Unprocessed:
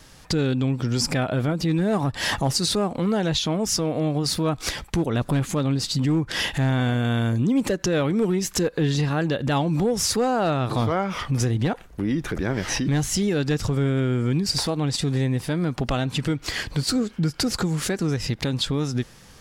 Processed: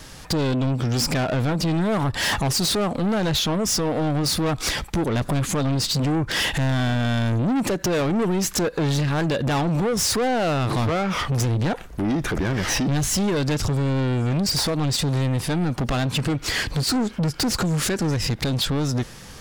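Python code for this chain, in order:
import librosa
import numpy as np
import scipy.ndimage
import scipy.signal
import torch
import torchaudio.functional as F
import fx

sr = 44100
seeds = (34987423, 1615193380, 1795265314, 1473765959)

y = 10.0 ** (-26.5 / 20.0) * np.tanh(x / 10.0 ** (-26.5 / 20.0))
y = y * 10.0 ** (7.5 / 20.0)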